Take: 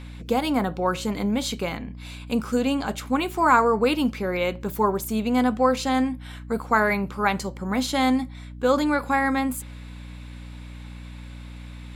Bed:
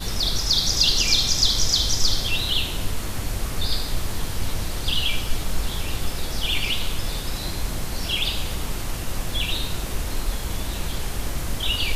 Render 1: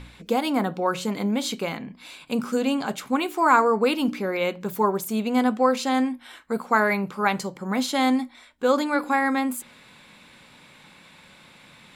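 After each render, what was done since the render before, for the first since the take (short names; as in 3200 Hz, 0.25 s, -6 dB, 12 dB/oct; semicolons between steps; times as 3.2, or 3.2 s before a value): de-hum 60 Hz, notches 5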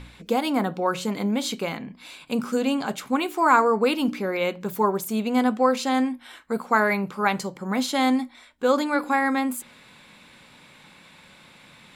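nothing audible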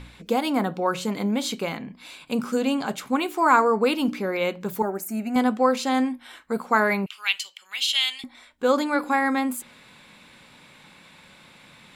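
4.82–5.36 fixed phaser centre 700 Hz, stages 8; 7.06–8.24 resonant high-pass 2900 Hz, resonance Q 6.8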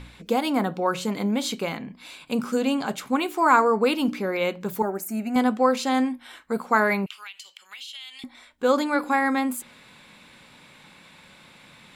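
7.23–8.22 compressor 5:1, threshold -38 dBFS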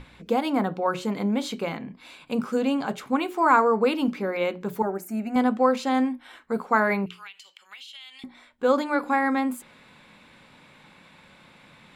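high shelf 3400 Hz -9 dB; notches 60/120/180/240/300/360/420 Hz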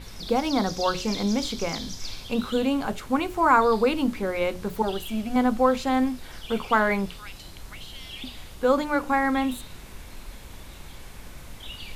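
add bed -15.5 dB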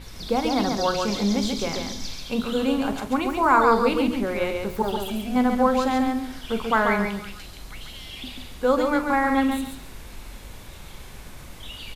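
doubler 44 ms -13 dB; on a send: feedback echo 0.138 s, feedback 23%, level -4.5 dB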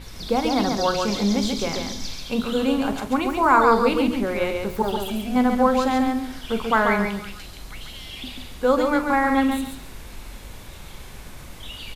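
gain +1.5 dB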